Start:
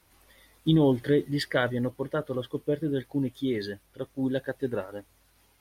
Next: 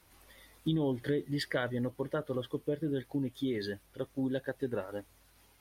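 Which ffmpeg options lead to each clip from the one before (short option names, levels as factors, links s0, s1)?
-af "acompressor=threshold=0.0251:ratio=2.5"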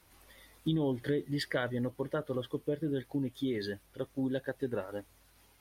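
-af anull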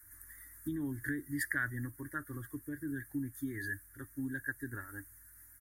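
-af "firequalizer=gain_entry='entry(110,0);entry(180,-20);entry(290,-3);entry(480,-28);entry(1700,8);entry(2700,-29);entry(6900,2);entry(11000,11)':delay=0.05:min_phase=1,volume=1.19"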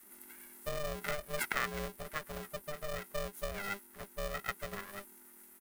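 -af "aeval=exprs='val(0)*sgn(sin(2*PI*300*n/s))':c=same"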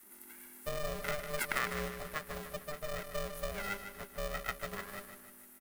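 -af "aecho=1:1:152|304|456|608|760|912:0.355|0.177|0.0887|0.0444|0.0222|0.0111"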